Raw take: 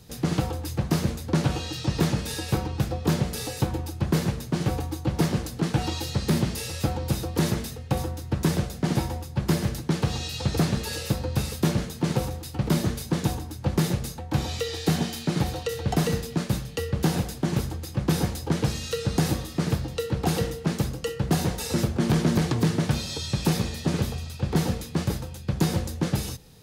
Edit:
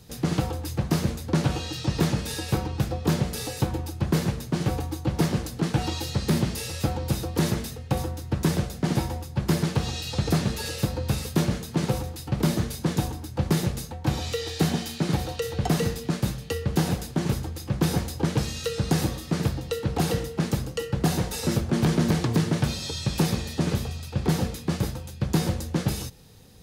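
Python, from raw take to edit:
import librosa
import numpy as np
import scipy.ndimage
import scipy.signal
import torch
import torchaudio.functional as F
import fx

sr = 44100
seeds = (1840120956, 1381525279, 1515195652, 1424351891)

y = fx.edit(x, sr, fx.cut(start_s=9.63, length_s=0.27), tone=tone)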